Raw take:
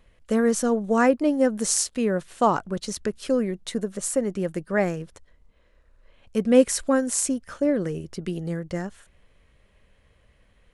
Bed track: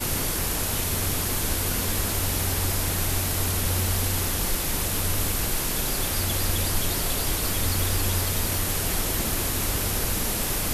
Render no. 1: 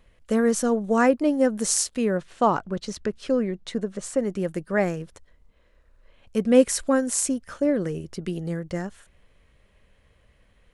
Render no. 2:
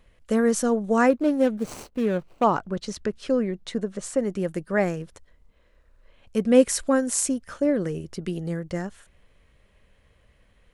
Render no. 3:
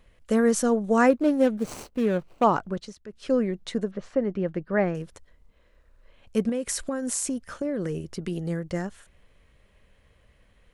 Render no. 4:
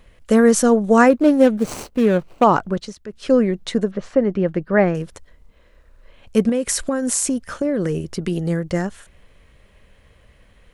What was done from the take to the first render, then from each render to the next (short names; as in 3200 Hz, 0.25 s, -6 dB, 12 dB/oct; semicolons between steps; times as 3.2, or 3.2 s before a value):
2.17–4.19 air absorption 72 m
1.1–2.44 median filter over 25 samples
2.69–3.34 dip -16 dB, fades 0.27 s; 3.91–4.95 air absorption 270 m; 6.49–8.32 compressor 10:1, threshold -24 dBFS
gain +8 dB; limiter -3 dBFS, peak gain reduction 3 dB